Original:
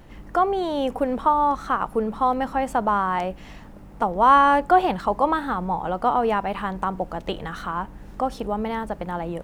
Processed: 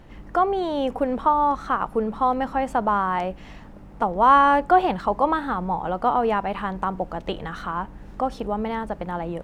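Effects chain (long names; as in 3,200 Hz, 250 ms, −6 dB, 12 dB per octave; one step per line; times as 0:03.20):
high-shelf EQ 7,800 Hz −9.5 dB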